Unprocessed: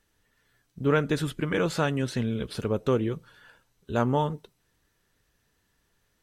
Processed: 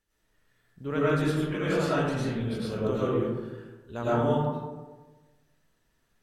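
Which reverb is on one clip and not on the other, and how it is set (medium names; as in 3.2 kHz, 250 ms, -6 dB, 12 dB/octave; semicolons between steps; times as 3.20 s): algorithmic reverb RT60 1.3 s, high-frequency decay 0.4×, pre-delay 65 ms, DRR -9.5 dB; trim -10.5 dB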